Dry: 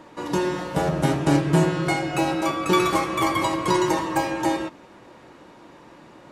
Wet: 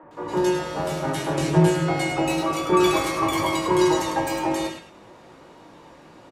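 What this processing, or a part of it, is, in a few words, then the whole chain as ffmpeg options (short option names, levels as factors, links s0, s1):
slapback doubling: -filter_complex "[0:a]asettb=1/sr,asplit=3[s0][s1][s2];[s0]atrim=end=0.764[s3];[s1]atrim=start=0.76:end=1.38,asetpts=PTS-STARTPTS,afade=t=in:d=0.004:c=qsin,afade=t=out:st=0.616:d=0.004:c=qsin,lowshelf=f=430:g=-8.5[s4];[s2]atrim=start=1.376[s5];[s3][s4]acrossfade=d=0.004:c1=hsin:c2=qsin[s6];[s6][s5]acrossfade=d=0.004:c1=qsin:c2=hsin,acrossover=split=270|1800[s7][s8][s9];[s7]adelay=30[s10];[s9]adelay=110[s11];[s10][s8][s11]amix=inputs=3:normalize=0,asplit=3[s12][s13][s14];[s13]adelay=19,volume=0.501[s15];[s14]adelay=102,volume=0.398[s16];[s12][s15][s16]amix=inputs=3:normalize=0"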